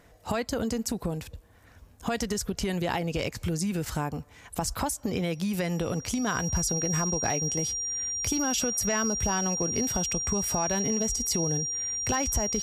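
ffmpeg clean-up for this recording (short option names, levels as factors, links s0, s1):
-af "bandreject=f=5700:w=30"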